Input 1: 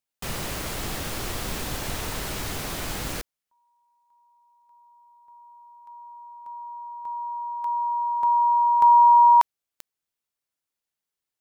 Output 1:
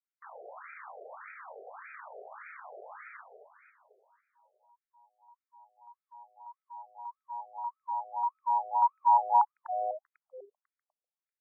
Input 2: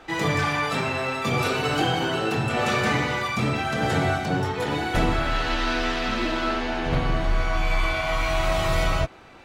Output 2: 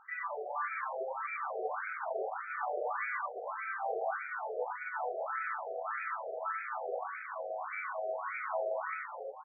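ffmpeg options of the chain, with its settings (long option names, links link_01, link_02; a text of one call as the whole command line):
ffmpeg -i in.wav -filter_complex "[0:a]aemphasis=mode=reproduction:type=50fm,asplit=7[link_01][link_02][link_03][link_04][link_05][link_06][link_07];[link_02]adelay=248,afreqshift=-110,volume=-6dB[link_08];[link_03]adelay=496,afreqshift=-220,volume=-11.8dB[link_09];[link_04]adelay=744,afreqshift=-330,volume=-17.7dB[link_10];[link_05]adelay=992,afreqshift=-440,volume=-23.5dB[link_11];[link_06]adelay=1240,afreqshift=-550,volume=-29.4dB[link_12];[link_07]adelay=1488,afreqshift=-660,volume=-35.2dB[link_13];[link_01][link_08][link_09][link_10][link_11][link_12][link_13]amix=inputs=7:normalize=0,afftfilt=real='re*between(b*sr/1024,540*pow(1800/540,0.5+0.5*sin(2*PI*1.7*pts/sr))/1.41,540*pow(1800/540,0.5+0.5*sin(2*PI*1.7*pts/sr))*1.41)':imag='im*between(b*sr/1024,540*pow(1800/540,0.5+0.5*sin(2*PI*1.7*pts/sr))/1.41,540*pow(1800/540,0.5+0.5*sin(2*PI*1.7*pts/sr))*1.41)':win_size=1024:overlap=0.75,volume=-7dB" out.wav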